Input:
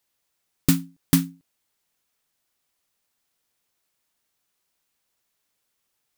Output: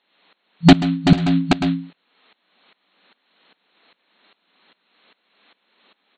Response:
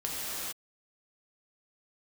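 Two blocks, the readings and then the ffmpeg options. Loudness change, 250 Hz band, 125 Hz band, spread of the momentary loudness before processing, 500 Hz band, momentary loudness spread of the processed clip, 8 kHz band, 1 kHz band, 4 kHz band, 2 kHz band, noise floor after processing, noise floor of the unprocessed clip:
+7.0 dB, +10.5 dB, +9.5 dB, 5 LU, +17.5 dB, 9 LU, -7.5 dB, +20.5 dB, +10.5 dB, +13.0 dB, -72 dBFS, -77 dBFS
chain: -filter_complex "[0:a]afftfilt=real='re*between(b*sr/4096,170,4300)':imag='im*between(b*sr/4096,170,4300)':win_size=4096:overlap=0.75,aeval=exprs='0.398*sin(PI/2*2.51*val(0)/0.398)':c=same,asplit=2[a][b];[b]aecho=0:1:54|131|135|383|491:0.126|0.106|0.501|0.178|0.473[c];[a][c]amix=inputs=2:normalize=0,alimiter=level_in=15.5dB:limit=-1dB:release=50:level=0:latency=1,aeval=exprs='val(0)*pow(10,-19*if(lt(mod(-2.5*n/s,1),2*abs(-2.5)/1000),1-mod(-2.5*n/s,1)/(2*abs(-2.5)/1000),(mod(-2.5*n/s,1)-2*abs(-2.5)/1000)/(1-2*abs(-2.5)/1000))/20)':c=same"

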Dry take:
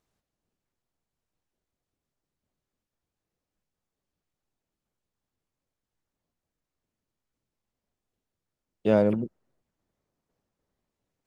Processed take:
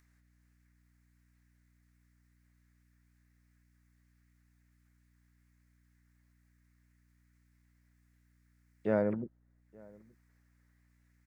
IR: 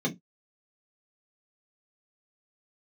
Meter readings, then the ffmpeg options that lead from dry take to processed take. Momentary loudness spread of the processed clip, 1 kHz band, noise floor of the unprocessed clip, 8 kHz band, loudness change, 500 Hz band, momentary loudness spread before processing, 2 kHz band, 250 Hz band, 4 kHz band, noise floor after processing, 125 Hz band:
12 LU, -7.0 dB, under -85 dBFS, n/a, -8.0 dB, -8.0 dB, 11 LU, -4.5 dB, -8.5 dB, under -15 dB, -70 dBFS, -8.5 dB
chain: -filter_complex "[0:a]highshelf=f=2.4k:t=q:w=3:g=-8,acrossover=split=1700[a][b];[b]acompressor=mode=upward:threshold=-52dB:ratio=2.5[c];[a][c]amix=inputs=2:normalize=0,aeval=exprs='val(0)+0.00112*(sin(2*PI*60*n/s)+sin(2*PI*2*60*n/s)/2+sin(2*PI*3*60*n/s)/3+sin(2*PI*4*60*n/s)/4+sin(2*PI*5*60*n/s)/5)':c=same,asplit=2[d][e];[e]adelay=874.6,volume=-25dB,highshelf=f=4k:g=-19.7[f];[d][f]amix=inputs=2:normalize=0,volume=-8.5dB"

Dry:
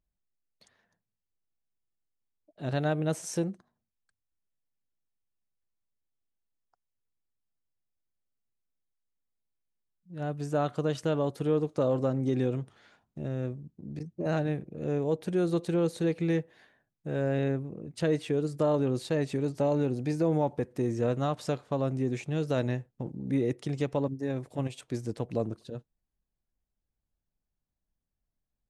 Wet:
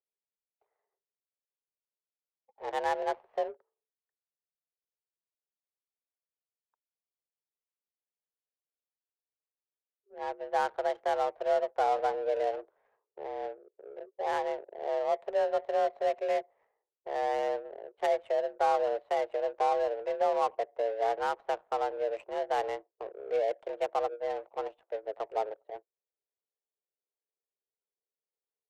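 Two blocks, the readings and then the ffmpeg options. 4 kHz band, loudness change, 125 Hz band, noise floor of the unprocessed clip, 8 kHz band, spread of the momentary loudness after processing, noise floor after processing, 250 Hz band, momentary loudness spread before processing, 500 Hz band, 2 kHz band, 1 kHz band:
-2.0 dB, -1.5 dB, under -35 dB, under -85 dBFS, n/a, 12 LU, under -85 dBFS, -19.0 dB, 11 LU, 0.0 dB, +1.0 dB, +9.0 dB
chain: -af "highpass=f=230:t=q:w=0.5412,highpass=f=230:t=q:w=1.307,lowpass=f=3.3k:t=q:w=0.5176,lowpass=f=3.3k:t=q:w=0.7071,lowpass=f=3.3k:t=q:w=1.932,afreqshift=210,adynamicsmooth=sensitivity=7:basefreq=570"

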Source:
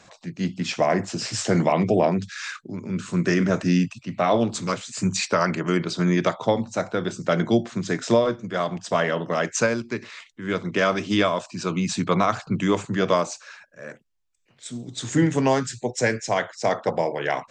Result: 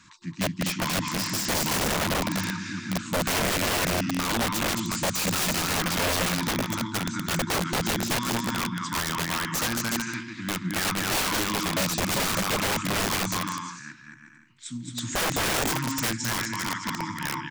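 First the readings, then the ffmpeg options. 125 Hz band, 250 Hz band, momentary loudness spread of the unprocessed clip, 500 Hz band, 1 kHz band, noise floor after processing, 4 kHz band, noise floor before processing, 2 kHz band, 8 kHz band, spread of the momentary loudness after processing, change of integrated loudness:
-4.5 dB, -5.5 dB, 12 LU, -9.5 dB, -3.0 dB, -48 dBFS, +5.0 dB, -59 dBFS, +0.5 dB, +5.0 dB, 7 LU, -2.5 dB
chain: -af "afftfilt=real='re*(1-between(b*sr/4096,350,880))':imag='im*(1-between(b*sr/4096,350,880))':win_size=4096:overlap=0.75,aecho=1:1:220|363|456|516.4|555.6:0.631|0.398|0.251|0.158|0.1,aeval=exprs='(mod(8.91*val(0)+1,2)-1)/8.91':c=same,volume=-1.5dB"

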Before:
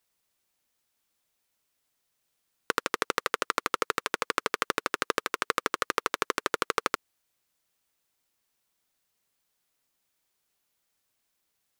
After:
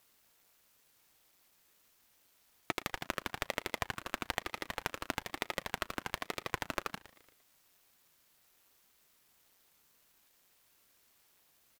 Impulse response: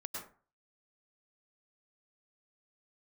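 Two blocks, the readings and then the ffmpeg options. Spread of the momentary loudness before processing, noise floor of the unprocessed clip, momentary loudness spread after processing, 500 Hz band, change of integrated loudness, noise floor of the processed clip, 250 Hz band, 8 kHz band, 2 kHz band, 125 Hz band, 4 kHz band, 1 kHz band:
1 LU, -78 dBFS, 2 LU, -10.0 dB, -9.0 dB, -70 dBFS, -5.0 dB, -9.0 dB, -8.5 dB, +3.0 dB, -7.0 dB, -10.5 dB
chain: -af "acontrast=80,alimiter=limit=-12dB:level=0:latency=1:release=20,equalizer=f=14k:t=o:w=0.32:g=9,acompressor=threshold=-37dB:ratio=2,aeval=exprs='0.282*sin(PI/2*1.78*val(0)/0.282)':c=same,aecho=1:1:115|230|345|460:0.112|0.0583|0.0303|0.0158,aeval=exprs='max(val(0),0)':c=same,highpass=82,highshelf=f=9.6k:g=-4,aeval=exprs='val(0)*sin(2*PI*460*n/s+460*0.8/1.1*sin(2*PI*1.1*n/s))':c=same"

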